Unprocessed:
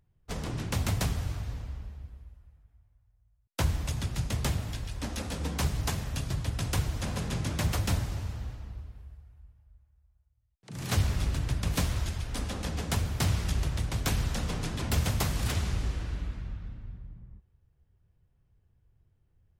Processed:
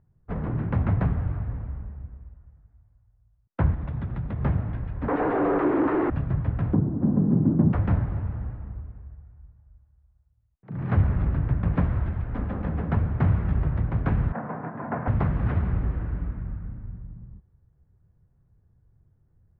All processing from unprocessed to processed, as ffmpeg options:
ffmpeg -i in.wav -filter_complex "[0:a]asettb=1/sr,asplit=3[link_01][link_02][link_03];[link_01]atrim=end=3.744[link_04];[link_02]atrim=start=3.74:end=4.41,asetpts=PTS-STARTPTS,afade=type=in:duration=0.004:curve=qsin,afade=type=out:start_time=0.666:duration=0.004:curve=qsin,acompressor=threshold=-32dB:ratio=4:attack=3.2:release=140:knee=1:detection=peak,equalizer=frequency=3600:width_type=o:width=0.27:gain=6[link_05];[link_03]atrim=start=4.406[link_06];[link_04][link_05]acrossfade=duration=0.004:curve1=hsin:curve2=qsin[link_07];[link_07][link_06]acrossfade=duration=0.004:curve1=qsin:curve2=hsin,asettb=1/sr,asplit=3[link_08][link_09][link_10];[link_08]atrim=end=5.084[link_11];[link_09]atrim=start=5.08:end=6.1,asetpts=PTS-STARTPTS,afade=type=in:duration=0.004:curve=qsin,afade=type=out:start_time=1.016:duration=0.004:curve=qsin,highpass=frequency=120:poles=1,afreqshift=220,asplit=2[link_12][link_13];[link_13]highpass=frequency=720:poles=1,volume=34dB,asoftclip=type=tanh:threshold=-18dB[link_14];[link_12][link_14]amix=inputs=2:normalize=0,lowpass=frequency=1200:poles=1,volume=-6dB[link_15];[link_10]atrim=start=6.096[link_16];[link_11][link_15]acrossfade=duration=0.004:curve1=hsin:curve2=qsin[link_17];[link_17][link_16]acrossfade=duration=0.004:curve1=qsin:curve2=hsin,asettb=1/sr,asplit=3[link_18][link_19][link_20];[link_18]atrim=end=6.734[link_21];[link_19]atrim=start=6.73:end=7.73,asetpts=PTS-STARTPTS,afade=type=in:duration=0.004:curve=qsin,afade=type=out:start_time=0.996:duration=0.004:curve=qsin,asuperpass=centerf=390:order=4:qfactor=0.6,lowshelf=frequency=410:width_type=q:width=1.5:gain=9.5[link_22];[link_20]atrim=start=7.726[link_23];[link_21][link_22]acrossfade=duration=0.004:curve1=hsin:curve2=qsin[link_24];[link_24][link_23]acrossfade=duration=0.004:curve1=qsin:curve2=hsin,asettb=1/sr,asplit=3[link_25][link_26][link_27];[link_25]atrim=end=14.324[link_28];[link_26]atrim=start=14.32:end=15.08,asetpts=PTS-STARTPTS,afade=type=in:duration=0.004:curve=qsin,afade=type=out:start_time=0.756:duration=0.004:curve=qsin,agate=range=-33dB:threshold=-31dB:ratio=3:release=100:detection=peak,highpass=frequency=160:width=0.5412,highpass=frequency=160:width=1.3066,equalizer=frequency=180:width_type=q:width=4:gain=-7,equalizer=frequency=350:width_type=q:width=4:gain=-5,equalizer=frequency=700:width_type=q:width=4:gain=8,equalizer=frequency=990:width_type=q:width=4:gain=6,equalizer=frequency=1600:width_type=q:width=4:gain=4,lowpass=frequency=2100:width=0.5412,lowpass=frequency=2100:width=1.3066[link_29];[link_27]atrim=start=15.076[link_30];[link_28][link_29]acrossfade=duration=0.004:curve1=hsin:curve2=qsin[link_31];[link_31][link_30]acrossfade=duration=0.004:curve1=qsin:curve2=hsin,lowpass=frequency=1700:width=0.5412,lowpass=frequency=1700:width=1.3066,equalizer=frequency=160:width=0.8:gain=5.5,volume=3dB" out.wav

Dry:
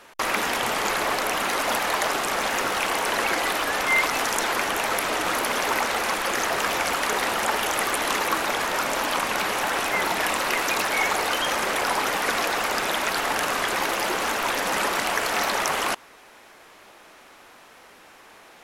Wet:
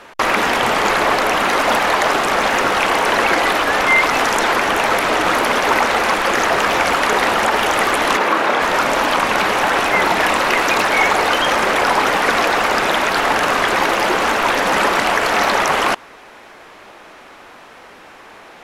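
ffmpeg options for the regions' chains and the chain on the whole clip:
ffmpeg -i in.wav -filter_complex "[0:a]asettb=1/sr,asplit=3[link_01][link_02][link_03];[link_01]atrim=end=8.174[link_04];[link_02]atrim=start=8.17:end=8.62,asetpts=PTS-STARTPTS,afade=type=in:duration=0.004:curve=qsin,afade=type=out:start_time=0.446:duration=0.004:curve=qsin,highpass=170,highshelf=frequency=4500:gain=-9.5,asplit=2[link_05][link_06];[link_06]adelay=30,volume=-6dB[link_07];[link_05][link_07]amix=inputs=2:normalize=0,atrim=end_sample=19845[link_08];[link_03]atrim=start=8.616[link_09];[link_04][link_08]acrossfade=duration=0.004:curve1=hsin:curve2=qsin[link_10];[link_10][link_09]acrossfade=duration=0.004:curve1=qsin:curve2=hsin,lowpass=frequency=3100:poles=1,alimiter=level_in=12.5dB:limit=-1dB:release=50:level=0:latency=1,volume=-2.5dB" out.wav

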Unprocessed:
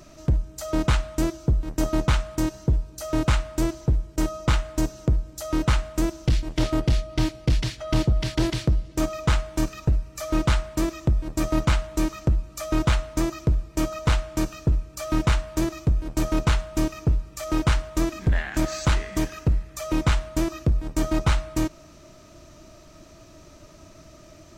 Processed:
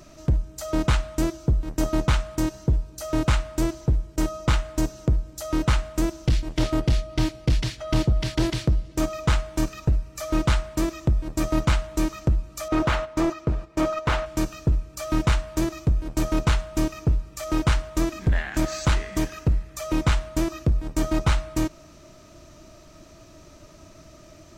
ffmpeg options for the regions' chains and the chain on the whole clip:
ffmpeg -i in.wav -filter_complex "[0:a]asettb=1/sr,asplit=3[link_01][link_02][link_03];[link_01]atrim=end=12.684[link_04];[link_02]atrim=start=12.68:end=14.26,asetpts=PTS-STARTPTS,afade=type=in:duration=0.004:curve=qsin,afade=type=out:start_time=1.576:duration=0.004:curve=qsin,agate=range=-9dB:threshold=-34dB:ratio=16:release=100:detection=peak,asplit=2[link_05][link_06];[link_06]highpass=frequency=720:poles=1,volume=19dB,asoftclip=type=tanh:threshold=-12dB[link_07];[link_05][link_07]amix=inputs=2:normalize=0,lowpass=frequency=1200:poles=1,volume=-6dB[link_08];[link_03]atrim=start=14.256[link_09];[link_04][link_08]acrossfade=duration=0.004:curve1=hsin:curve2=qsin[link_10];[link_10][link_09]acrossfade=duration=0.004:curve1=qsin:curve2=hsin" out.wav

